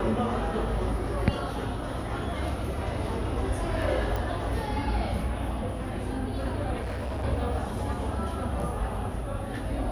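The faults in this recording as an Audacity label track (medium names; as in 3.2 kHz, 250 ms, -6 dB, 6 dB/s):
4.160000	4.160000	pop
6.820000	7.250000	clipped -29 dBFS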